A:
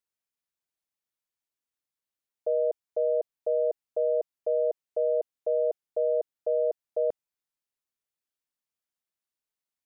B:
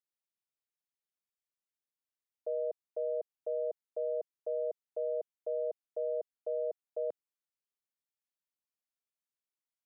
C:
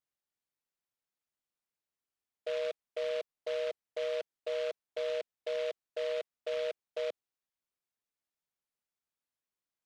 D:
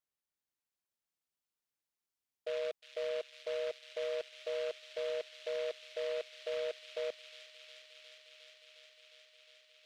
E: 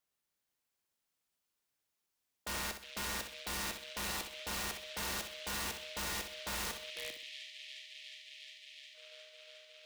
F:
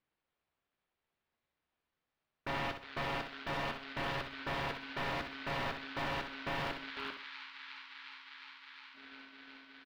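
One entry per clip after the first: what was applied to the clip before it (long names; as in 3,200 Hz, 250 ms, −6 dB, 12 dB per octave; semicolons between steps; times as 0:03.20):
high-pass filter 160 Hz; level −8.5 dB
short delay modulated by noise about 2,300 Hz, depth 0.064 ms
delay with a high-pass on its return 358 ms, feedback 85%, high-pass 2,700 Hz, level −5 dB; level −2.5 dB
gain on a spectral selection 0:06.90–0:08.95, 370–1,700 Hz −20 dB; wrap-around overflow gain 38.5 dB; flutter between parallel walls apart 10.8 metres, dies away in 0.44 s; level +5.5 dB
ring modulation 890 Hz; high-frequency loss of the air 370 metres; double-tracking delay 13 ms −13.5 dB; level +9.5 dB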